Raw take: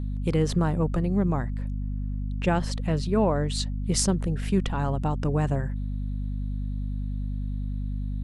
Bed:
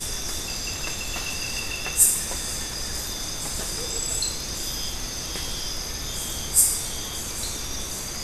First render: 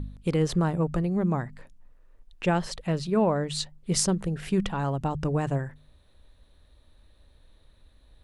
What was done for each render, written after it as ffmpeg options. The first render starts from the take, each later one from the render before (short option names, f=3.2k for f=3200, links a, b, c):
-af "bandreject=f=50:t=h:w=4,bandreject=f=100:t=h:w=4,bandreject=f=150:t=h:w=4,bandreject=f=200:t=h:w=4,bandreject=f=250:t=h:w=4"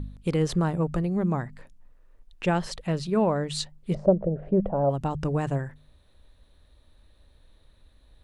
-filter_complex "[0:a]asplit=3[a][b][c];[a]afade=t=out:st=3.93:d=0.02[d];[b]lowpass=f=600:t=q:w=7.4,afade=t=in:st=3.93:d=0.02,afade=t=out:st=4.89:d=0.02[e];[c]afade=t=in:st=4.89:d=0.02[f];[d][e][f]amix=inputs=3:normalize=0"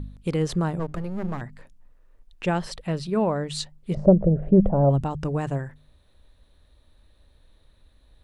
-filter_complex "[0:a]asettb=1/sr,asplit=3[a][b][c];[a]atrim=end=0.794[d];[b]atrim=start=0.79:end=1.41,asetpts=PTS-STARTPTS,afade=t=in:d=0.004:c=qsin,afade=t=out:st=0.616:d=0.004:c=qsin,aeval=exprs='if(lt(val(0),0),0.251*val(0),val(0))':c=same[e];[c]atrim=start=1.406[f];[d][e]acrossfade=d=0.004:c1=hsin:c2=qsin[g];[g][f]acrossfade=d=0.004:c1=qsin:c2=hsin,asettb=1/sr,asplit=3[h][i][j];[h]atrim=end=2.634[k];[i]atrim=start=2.63:end=3.46,asetpts=PTS-STARTPTS,afade=t=in:d=0.004:c=qsin,afade=t=out:st=0.826:d=0.004:c=qsin,bandreject=f=6.7k:w=9.1[l];[j]atrim=start=3.456[m];[k][l]acrossfade=d=0.004:c1=hsin:c2=qsin[n];[n][m]acrossfade=d=0.004:c1=qsin:c2=hsin,asettb=1/sr,asplit=3[o][p][q];[o]atrim=end=3.974[r];[p]atrim=start=3.97:end=5.04,asetpts=PTS-STARTPTS,afade=t=in:d=0.004:c=qsin,afade=t=out:st=1.066:d=0.004:c=qsin,lowshelf=f=290:g=11.5[s];[q]atrim=start=5.036[t];[r][s]acrossfade=d=0.004:c1=hsin:c2=qsin[u];[u][t]acrossfade=d=0.004:c1=qsin:c2=hsin"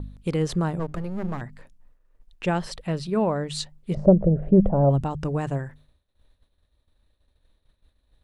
-af "agate=range=-33dB:threshold=-47dB:ratio=3:detection=peak"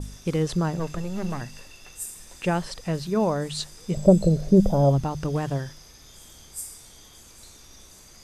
-filter_complex "[1:a]volume=-18dB[a];[0:a][a]amix=inputs=2:normalize=0"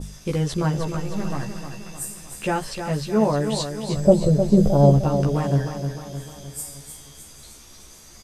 -filter_complex "[0:a]asplit=2[a][b];[b]adelay=14,volume=-2dB[c];[a][c]amix=inputs=2:normalize=0,asplit=2[d][e];[e]aecho=0:1:307|614|921|1228|1535|1842:0.398|0.207|0.108|0.056|0.0291|0.0151[f];[d][f]amix=inputs=2:normalize=0"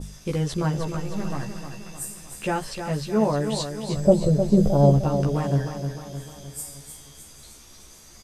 -af "volume=-2dB"